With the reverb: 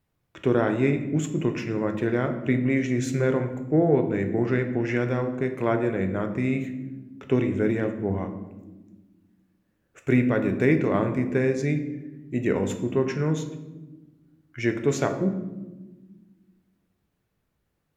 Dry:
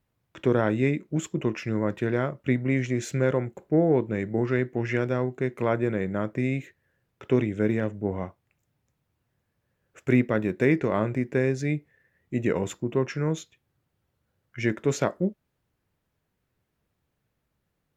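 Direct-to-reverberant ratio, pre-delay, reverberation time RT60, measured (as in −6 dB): 6.0 dB, 3 ms, 1.2 s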